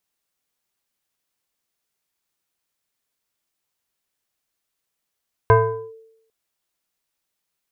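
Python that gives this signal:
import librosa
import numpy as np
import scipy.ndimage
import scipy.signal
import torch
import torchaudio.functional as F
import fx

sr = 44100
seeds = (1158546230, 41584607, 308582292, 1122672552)

y = fx.fm2(sr, length_s=0.8, level_db=-7.0, carrier_hz=447.0, ratio=1.25, index=1.4, index_s=0.43, decay_s=0.8, shape='linear')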